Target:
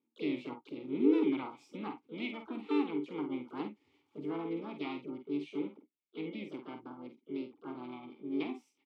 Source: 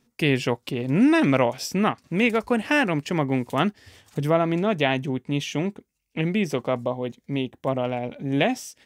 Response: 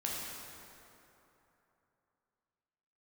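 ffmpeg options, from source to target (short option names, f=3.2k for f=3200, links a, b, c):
-filter_complex "[0:a]asplit=3[a][b][c];[a]bandpass=f=300:t=q:w=8,volume=0dB[d];[b]bandpass=f=870:t=q:w=8,volume=-6dB[e];[c]bandpass=f=2.24k:t=q:w=8,volume=-9dB[f];[d][e][f]amix=inputs=3:normalize=0,asplit=3[g][h][i];[h]asetrate=58866,aresample=44100,atempo=0.749154,volume=-7dB[j];[i]asetrate=66075,aresample=44100,atempo=0.66742,volume=-10dB[k];[g][j][k]amix=inputs=3:normalize=0,aecho=1:1:48|61:0.422|0.141,volume=-7dB"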